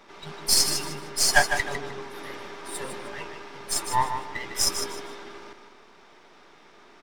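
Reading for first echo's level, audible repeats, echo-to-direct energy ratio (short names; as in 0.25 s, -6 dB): -8.0 dB, 3, -7.5 dB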